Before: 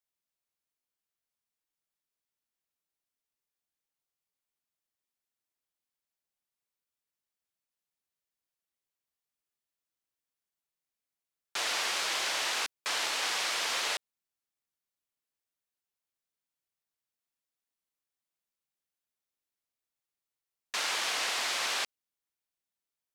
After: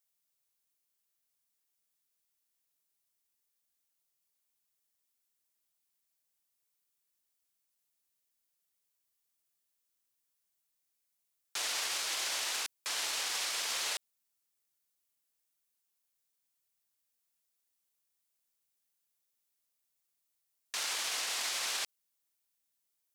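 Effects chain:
high-shelf EQ 4,700 Hz +11 dB
brickwall limiter −26 dBFS, peak gain reduction 11 dB

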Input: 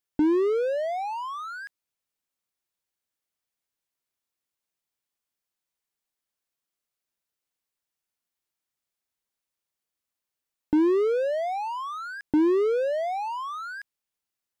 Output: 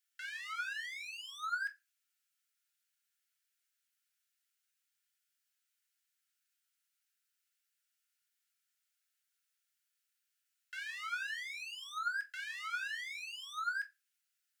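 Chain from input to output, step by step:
Chebyshev high-pass filter 1,300 Hz, order 10
brickwall limiter −38 dBFS, peak gain reduction 7.5 dB
convolution reverb RT60 0.30 s, pre-delay 5 ms, DRR 4 dB
level +2.5 dB

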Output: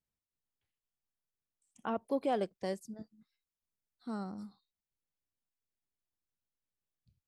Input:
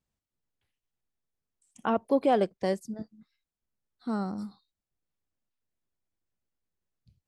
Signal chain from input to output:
0:02.01–0:04.24: high-shelf EQ 4,500 Hz +5.5 dB
level −8.5 dB

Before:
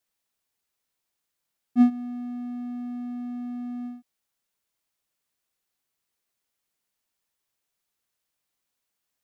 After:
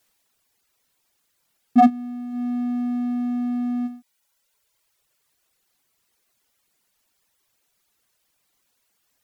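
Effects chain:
reverb reduction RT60 1.2 s
sine wavefolder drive 10 dB, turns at −8 dBFS

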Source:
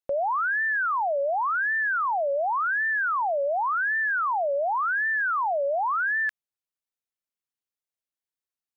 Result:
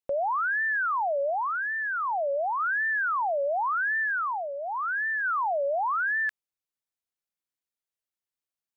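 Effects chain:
0:01.30–0:02.60: low-pass filter 1,600 Hz 6 dB per octave
0:04.03–0:05.23: parametric band 410 Hz −6 dB → −13.5 dB 1.9 octaves
level −1.5 dB

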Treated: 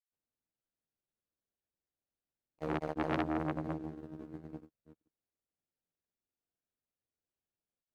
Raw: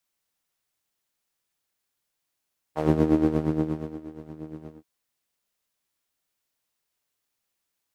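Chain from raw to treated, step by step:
running median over 41 samples
granular cloud, grains 20 per second, spray 299 ms
saturating transformer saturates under 1,500 Hz
level −4.5 dB

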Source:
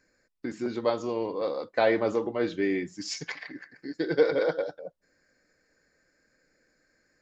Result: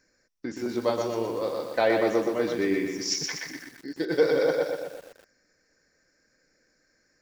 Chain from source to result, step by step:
parametric band 5,700 Hz +13.5 dB 0.21 octaves
feedback echo at a low word length 122 ms, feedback 55%, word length 8 bits, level −4.5 dB

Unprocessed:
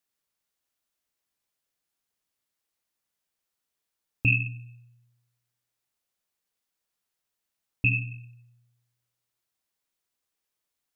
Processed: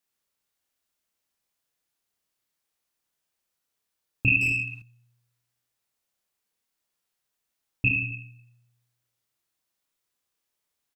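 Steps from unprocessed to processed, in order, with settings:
reverse bouncing-ball delay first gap 30 ms, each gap 1.3×, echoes 5
0:04.41–0:04.82: mid-hump overdrive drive 26 dB, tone 1,900 Hz, clips at −12.5 dBFS

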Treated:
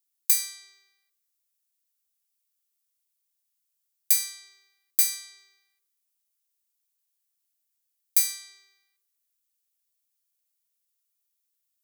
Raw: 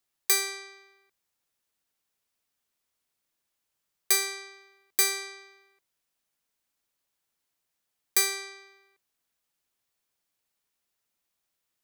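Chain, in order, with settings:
first difference
on a send: convolution reverb RT60 0.80 s, pre-delay 3 ms, DRR 7.5 dB

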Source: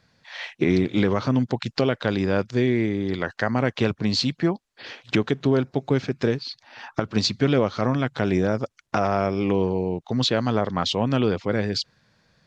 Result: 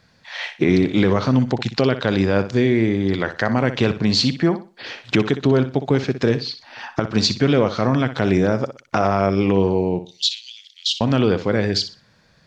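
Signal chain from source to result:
0:10.03–0:11.01: Butterworth high-pass 2,800 Hz 48 dB per octave
in parallel at −1 dB: brickwall limiter −14.5 dBFS, peak gain reduction 10 dB
on the sum: flutter between parallel walls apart 10.5 metres, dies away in 0.31 s

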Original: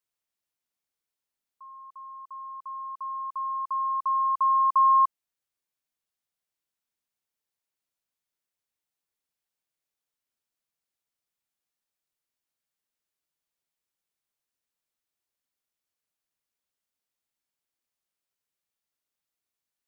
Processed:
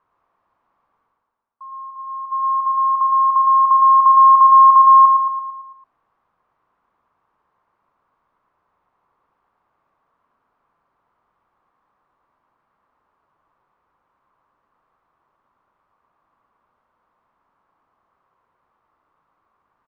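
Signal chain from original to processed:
noise gate −42 dBFS, range −13 dB
in parallel at +2.5 dB: downward compressor, threshold −35 dBFS, peak gain reduction 15.5 dB
on the sum: brickwall limiter −17.5 dBFS, peak gain reduction 4.5 dB
reversed playback
upward compression, threshold −42 dBFS
reversed playback
low-pass with resonance 1,100 Hz, resonance Q 4.2
repeating echo 112 ms, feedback 53%, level −4.5 dB
level −1 dB

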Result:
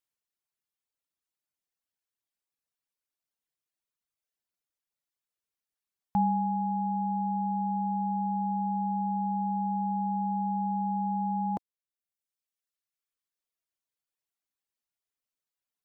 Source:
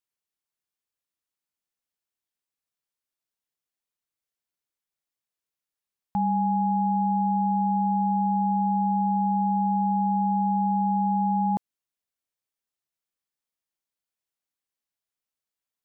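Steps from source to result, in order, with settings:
reverb reduction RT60 1.5 s

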